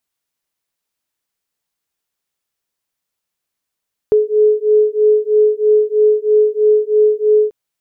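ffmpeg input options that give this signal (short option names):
-f lavfi -i "aevalsrc='0.237*(sin(2*PI*424*t)+sin(2*PI*427.1*t))':d=3.39:s=44100"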